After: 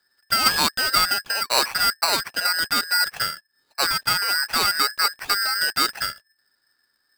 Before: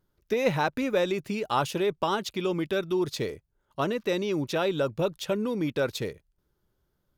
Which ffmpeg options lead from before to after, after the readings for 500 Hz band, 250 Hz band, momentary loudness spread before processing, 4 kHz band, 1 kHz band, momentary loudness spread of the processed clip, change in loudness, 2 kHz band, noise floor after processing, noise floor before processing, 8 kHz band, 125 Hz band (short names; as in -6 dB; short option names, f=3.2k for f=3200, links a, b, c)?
-9.0 dB, -9.0 dB, 6 LU, +17.0 dB, +8.0 dB, 6 LU, +8.0 dB, +12.5 dB, -71 dBFS, -76 dBFS, +18.5 dB, -9.0 dB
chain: -af "lowpass=f=3k:t=q:w=0.5098,lowpass=f=3k:t=q:w=0.6013,lowpass=f=3k:t=q:w=0.9,lowpass=f=3k:t=q:w=2.563,afreqshift=-3500,tiltshelf=f=970:g=4,aeval=exprs='val(0)*sgn(sin(2*PI*1700*n/s))':c=same,volume=8.5dB"